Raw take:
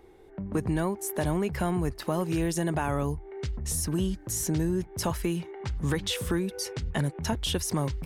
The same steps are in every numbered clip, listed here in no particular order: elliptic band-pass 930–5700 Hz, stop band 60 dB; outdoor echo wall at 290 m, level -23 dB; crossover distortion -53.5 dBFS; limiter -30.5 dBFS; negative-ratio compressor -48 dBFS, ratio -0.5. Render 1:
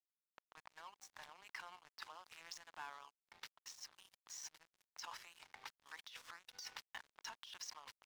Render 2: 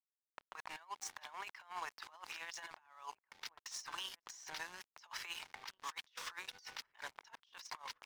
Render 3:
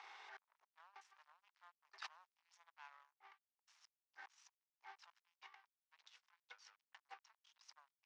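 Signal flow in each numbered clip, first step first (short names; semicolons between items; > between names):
outdoor echo > limiter > elliptic band-pass > crossover distortion > negative-ratio compressor; elliptic band-pass > crossover distortion > negative-ratio compressor > limiter > outdoor echo; limiter > outdoor echo > negative-ratio compressor > crossover distortion > elliptic band-pass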